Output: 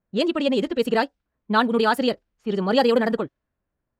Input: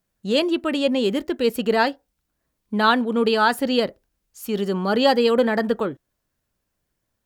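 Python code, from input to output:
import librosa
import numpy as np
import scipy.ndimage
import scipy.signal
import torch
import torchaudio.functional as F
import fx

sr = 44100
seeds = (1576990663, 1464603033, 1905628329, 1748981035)

y = fx.stretch_vocoder(x, sr, factor=0.55)
y = fx.env_lowpass(y, sr, base_hz=1500.0, full_db=-15.5)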